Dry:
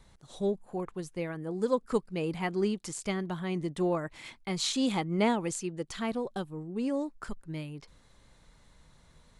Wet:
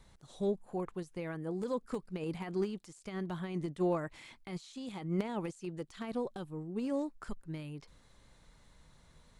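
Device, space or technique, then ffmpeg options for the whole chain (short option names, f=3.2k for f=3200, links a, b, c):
de-esser from a sidechain: -filter_complex "[0:a]asplit=2[a][b];[b]highpass=4.4k,apad=whole_len=414262[c];[a][c]sidechaincompress=threshold=-53dB:ratio=6:attack=0.58:release=41,volume=-2dB"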